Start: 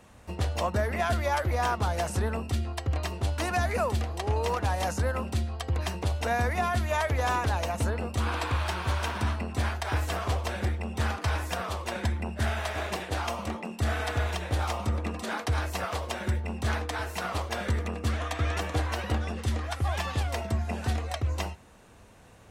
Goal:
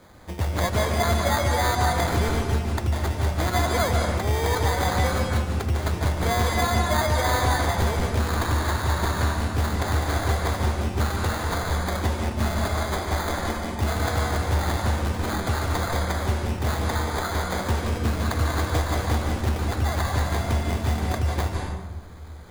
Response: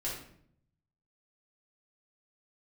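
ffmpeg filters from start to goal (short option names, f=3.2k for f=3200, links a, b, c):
-filter_complex "[0:a]highshelf=f=6k:t=q:w=3:g=6.5,acrusher=samples=16:mix=1:aa=0.000001,asplit=2[a][b];[1:a]atrim=start_sample=2205,asetrate=22932,aresample=44100,adelay=144[c];[b][c]afir=irnorm=-1:irlink=0,volume=-8.5dB[d];[a][d]amix=inputs=2:normalize=0,volume=2.5dB"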